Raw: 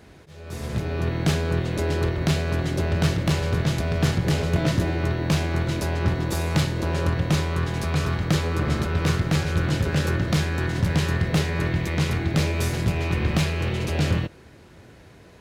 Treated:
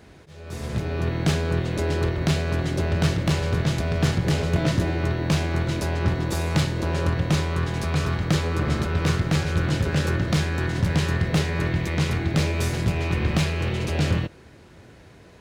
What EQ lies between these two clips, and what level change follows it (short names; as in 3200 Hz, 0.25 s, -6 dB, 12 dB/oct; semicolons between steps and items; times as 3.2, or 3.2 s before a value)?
bell 12000 Hz -6 dB 0.23 oct; 0.0 dB